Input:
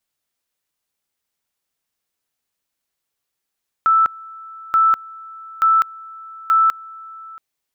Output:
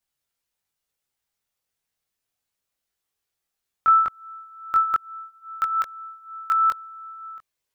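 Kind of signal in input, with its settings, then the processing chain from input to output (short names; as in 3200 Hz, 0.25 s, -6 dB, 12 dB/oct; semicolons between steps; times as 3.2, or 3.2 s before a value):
two-level tone 1320 Hz -10.5 dBFS, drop 23 dB, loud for 0.20 s, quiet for 0.68 s, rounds 4
chorus voices 6, 0.27 Hz, delay 21 ms, depth 1.4 ms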